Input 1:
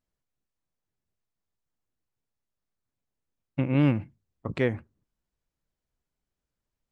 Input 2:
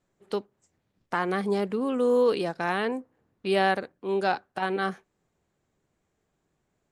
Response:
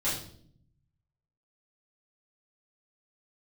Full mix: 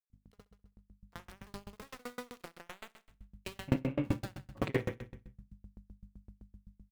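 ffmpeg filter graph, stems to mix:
-filter_complex "[0:a]acompressor=threshold=-32dB:ratio=6,aeval=exprs='val(0)+0.00178*(sin(2*PI*50*n/s)+sin(2*PI*2*50*n/s)/2+sin(2*PI*3*50*n/s)/3+sin(2*PI*4*50*n/s)/4+sin(2*PI*5*50*n/s)/5)':channel_layout=same,adelay=100,volume=2dB,asplit=3[link_01][link_02][link_03];[link_01]atrim=end=1.76,asetpts=PTS-STARTPTS,afade=type=out:start_time=1.756:duration=0.004:curve=hsin[link_04];[link_02]atrim=start=1.76:end=3.08,asetpts=PTS-STARTPTS,volume=0[link_05];[link_03]atrim=start=3.08,asetpts=PTS-STARTPTS,afade=type=in:duration=0.004:curve=hsin[link_06];[link_04][link_05][link_06]concat=n=3:v=0:a=1,asplit=3[link_07][link_08][link_09];[link_08]volume=-17.5dB[link_10];[link_09]volume=-8dB[link_11];[1:a]equalizer=frequency=100:width_type=o:width=1.3:gain=-12,acompressor=threshold=-34dB:ratio=8,aeval=exprs='val(0)*gte(abs(val(0)),0.0251)':channel_layout=same,volume=-12dB,asplit=3[link_12][link_13][link_14];[link_13]volume=-7.5dB[link_15];[link_14]apad=whole_len=309198[link_16];[link_07][link_16]sidechaingate=range=-33dB:threshold=-54dB:ratio=16:detection=peak[link_17];[2:a]atrim=start_sample=2205[link_18];[link_10][link_18]afir=irnorm=-1:irlink=0[link_19];[link_11][link_15]amix=inputs=2:normalize=0,aecho=0:1:65|130|195|260|325|390|455|520|585:1|0.57|0.325|0.185|0.106|0.0602|0.0343|0.0195|0.0111[link_20];[link_17][link_12][link_19][link_20]amix=inputs=4:normalize=0,dynaudnorm=framelen=240:gausssize=9:maxgain=11.5dB,aeval=exprs='val(0)*pow(10,-34*if(lt(mod(7.8*n/s,1),2*abs(7.8)/1000),1-mod(7.8*n/s,1)/(2*abs(7.8)/1000),(mod(7.8*n/s,1)-2*abs(7.8)/1000)/(1-2*abs(7.8)/1000))/20)':channel_layout=same"

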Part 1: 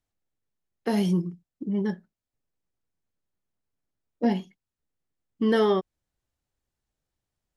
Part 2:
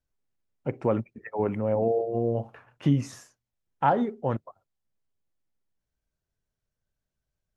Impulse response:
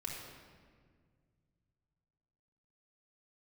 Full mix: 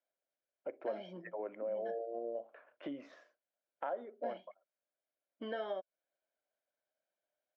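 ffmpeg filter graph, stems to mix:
-filter_complex "[0:a]deesser=1,aecho=1:1:1.3:0.61,volume=-2dB[link_01];[1:a]volume=-3dB[link_02];[link_01][link_02]amix=inputs=2:normalize=0,highpass=frequency=370:width=0.5412,highpass=frequency=370:width=1.3066,equalizer=frequency=420:width_type=q:width=4:gain=-6,equalizer=frequency=600:width_type=q:width=4:gain=8,equalizer=frequency=860:width_type=q:width=4:gain=-10,equalizer=frequency=1200:width_type=q:width=4:gain=-5,equalizer=frequency=1900:width_type=q:width=4:gain=-4,equalizer=frequency=2700:width_type=q:width=4:gain=-8,lowpass=frequency=3000:width=0.5412,lowpass=frequency=3000:width=1.3066,acompressor=threshold=-41dB:ratio=2.5"

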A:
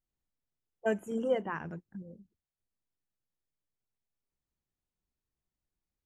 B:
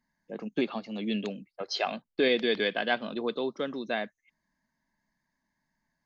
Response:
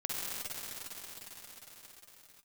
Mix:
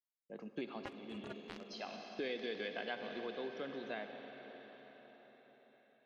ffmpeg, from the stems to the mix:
-filter_complex "[0:a]acompressor=threshold=-37dB:ratio=6,acrusher=bits=4:mix=0:aa=0.5,aeval=exprs='val(0)*sin(2*PI*130*n/s)':channel_layout=same,volume=1dB,asplit=2[link_01][link_02];[1:a]equalizer=frequency=240:width_type=o:width=0.32:gain=-2.5,agate=range=-33dB:threshold=-51dB:ratio=3:detection=peak,volume=-12dB,asplit=2[link_03][link_04];[link_04]volume=-10.5dB[link_05];[link_02]apad=whole_len=266825[link_06];[link_03][link_06]sidechaincompress=threshold=-56dB:ratio=8:attack=7.4:release=440[link_07];[2:a]atrim=start_sample=2205[link_08];[link_05][link_08]afir=irnorm=-1:irlink=0[link_09];[link_01][link_07][link_09]amix=inputs=3:normalize=0,bandreject=frequency=3600:width=26,acompressor=threshold=-39dB:ratio=2.5"

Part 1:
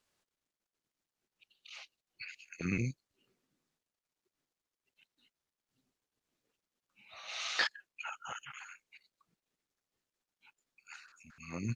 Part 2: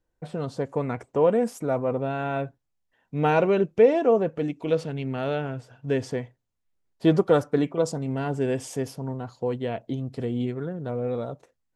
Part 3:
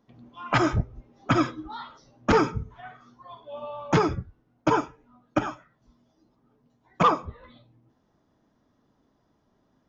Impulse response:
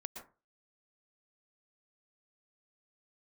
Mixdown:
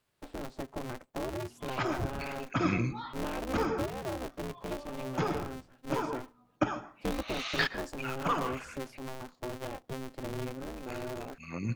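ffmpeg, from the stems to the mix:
-filter_complex "[0:a]equalizer=frequency=6200:width=1.5:gain=-7.5,volume=0dB,asplit=2[link_01][link_02];[link_02]volume=-4dB[link_03];[1:a]acrossover=split=220|3000[link_04][link_05][link_06];[link_05]acompressor=threshold=-27dB:ratio=5[link_07];[link_04][link_07][link_06]amix=inputs=3:normalize=0,highshelf=frequency=4900:gain=-9,aeval=exprs='val(0)*sgn(sin(2*PI*130*n/s))':channel_layout=same,volume=-9dB,asplit=2[link_08][link_09];[2:a]adelay=1250,volume=-7dB,asplit=2[link_10][link_11];[link_11]volume=-3.5dB[link_12];[link_09]apad=whole_len=490912[link_13];[link_10][link_13]sidechaincompress=threshold=-52dB:ratio=3:attack=16:release=316[link_14];[3:a]atrim=start_sample=2205[link_15];[link_03][link_12]amix=inputs=2:normalize=0[link_16];[link_16][link_15]afir=irnorm=-1:irlink=0[link_17];[link_01][link_08][link_14][link_17]amix=inputs=4:normalize=0"

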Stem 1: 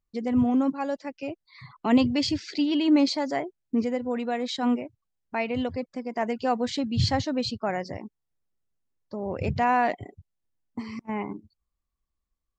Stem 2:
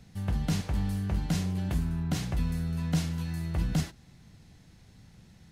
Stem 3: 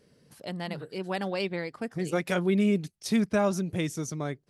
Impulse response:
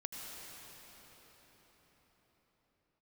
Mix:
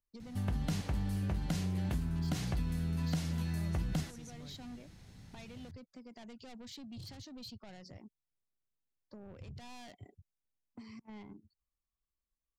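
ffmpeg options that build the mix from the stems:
-filter_complex "[0:a]asoftclip=type=tanh:threshold=-28dB,volume=-9.5dB[link_01];[1:a]adelay=200,volume=0dB[link_02];[2:a]adelay=200,volume=-13.5dB[link_03];[link_01][link_03]amix=inputs=2:normalize=0,acrossover=split=190|3000[link_04][link_05][link_06];[link_05]acompressor=threshold=-53dB:ratio=6[link_07];[link_04][link_07][link_06]amix=inputs=3:normalize=0,alimiter=level_in=16.5dB:limit=-24dB:level=0:latency=1,volume=-16.5dB,volume=0dB[link_08];[link_02][link_08]amix=inputs=2:normalize=0,acompressor=threshold=-31dB:ratio=5"

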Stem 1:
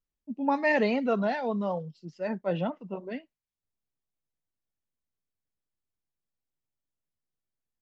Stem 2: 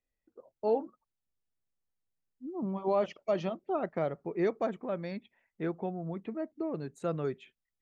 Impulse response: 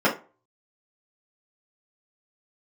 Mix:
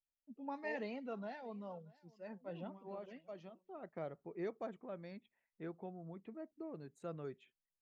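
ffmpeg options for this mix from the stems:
-filter_complex "[0:a]volume=-18dB,asplit=2[link_01][link_02];[link_02]volume=-23.5dB[link_03];[1:a]volume=-12.5dB,afade=type=in:start_time=3.73:duration=0.27:silence=0.398107[link_04];[link_03]aecho=0:1:632:1[link_05];[link_01][link_04][link_05]amix=inputs=3:normalize=0"

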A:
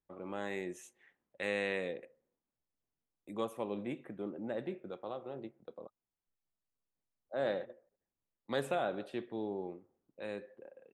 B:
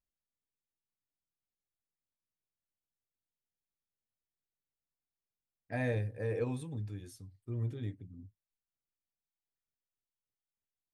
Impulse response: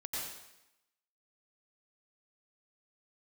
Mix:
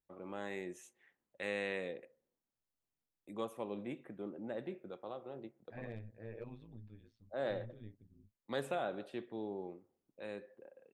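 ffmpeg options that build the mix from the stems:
-filter_complex "[0:a]volume=-3.5dB[link_01];[1:a]lowpass=frequency=3900:width=0.5412,lowpass=frequency=3900:width=1.3066,tremolo=f=110:d=0.857,asoftclip=type=hard:threshold=-26dB,volume=-10dB[link_02];[link_01][link_02]amix=inputs=2:normalize=0"

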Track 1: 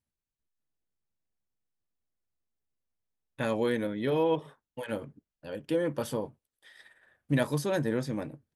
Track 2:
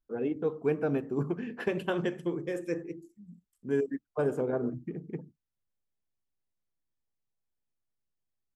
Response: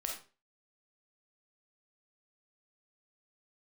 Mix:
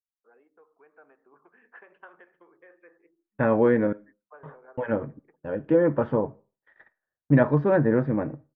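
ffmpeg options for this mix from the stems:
-filter_complex "[0:a]agate=range=-31dB:threshold=-53dB:ratio=16:detection=peak,volume=2dB,asplit=3[link_01][link_02][link_03];[link_01]atrim=end=3.93,asetpts=PTS-STARTPTS,afade=type=out:start_time=3.926:duration=0.004:curve=hsin[link_04];[link_02]atrim=start=3.93:end=4.43,asetpts=PTS-STARTPTS,volume=0[link_05];[link_03]atrim=start=4.43,asetpts=PTS-STARTPTS,afade=type=in:duration=0.004:curve=hsin[link_06];[link_04][link_05][link_06]concat=n=3:v=0:a=1,asplit=2[link_07][link_08];[link_08]volume=-16dB[link_09];[1:a]acompressor=threshold=-34dB:ratio=2.5,highpass=1100,adelay=150,volume=-8.5dB[link_10];[2:a]atrim=start_sample=2205[link_11];[link_09][link_11]afir=irnorm=-1:irlink=0[link_12];[link_07][link_10][link_12]amix=inputs=3:normalize=0,lowpass=frequency=1700:width=0.5412,lowpass=frequency=1700:width=1.3066,dynaudnorm=framelen=840:gausssize=3:maxgain=5.5dB"

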